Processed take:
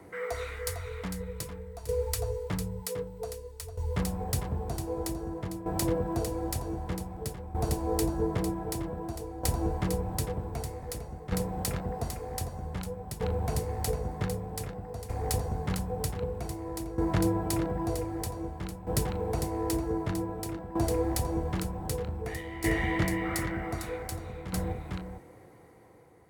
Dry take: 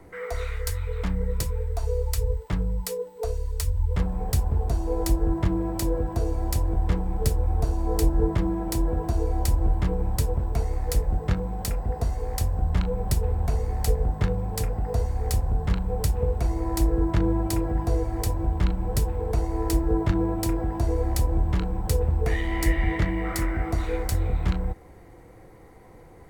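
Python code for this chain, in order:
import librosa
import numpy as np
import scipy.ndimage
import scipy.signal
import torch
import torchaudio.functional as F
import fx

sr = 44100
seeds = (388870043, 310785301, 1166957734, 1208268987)

y = scipy.signal.sosfilt(scipy.signal.butter(2, 100.0, 'highpass', fs=sr, output='sos'), x)
y = fx.peak_eq(y, sr, hz=10000.0, db=4.0, octaves=0.22)
y = y + 10.0 ** (-6.0 / 20.0) * np.pad(y, (int(452 * sr / 1000.0), 0))[:len(y)]
y = fx.tremolo_shape(y, sr, shape='saw_down', hz=0.53, depth_pct=75)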